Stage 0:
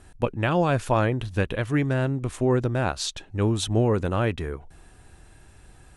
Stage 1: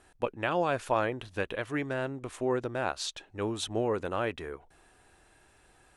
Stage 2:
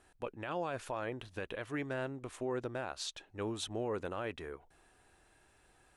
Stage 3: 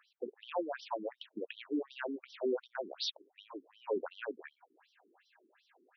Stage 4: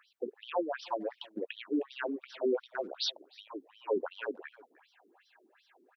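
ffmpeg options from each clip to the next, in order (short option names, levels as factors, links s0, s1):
-af "bass=f=250:g=-13,treble=f=4000:g=-3,volume=0.631"
-af "alimiter=limit=0.075:level=0:latency=1:release=30,volume=0.562"
-af "afftfilt=real='re*between(b*sr/1024,290*pow(4300/290,0.5+0.5*sin(2*PI*2.7*pts/sr))/1.41,290*pow(4300/290,0.5+0.5*sin(2*PI*2.7*pts/sr))*1.41)':imag='im*between(b*sr/1024,290*pow(4300/290,0.5+0.5*sin(2*PI*2.7*pts/sr))/1.41,290*pow(4300/290,0.5+0.5*sin(2*PI*2.7*pts/sr))*1.41)':win_size=1024:overlap=0.75,volume=2"
-filter_complex "[0:a]asplit=2[s0][s1];[s1]adelay=310,highpass=300,lowpass=3400,asoftclip=type=hard:threshold=0.0224,volume=0.1[s2];[s0][s2]amix=inputs=2:normalize=0,volume=1.5"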